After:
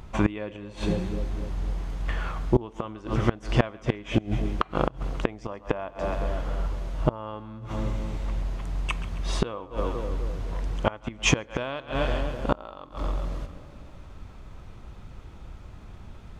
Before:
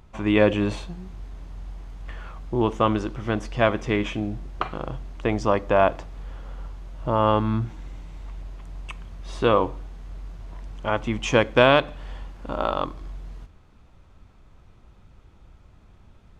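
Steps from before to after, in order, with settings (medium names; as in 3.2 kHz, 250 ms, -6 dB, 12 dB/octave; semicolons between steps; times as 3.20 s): two-band feedback delay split 550 Hz, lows 253 ms, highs 135 ms, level -16 dB; inverted gate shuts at -16 dBFS, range -25 dB; trim +8 dB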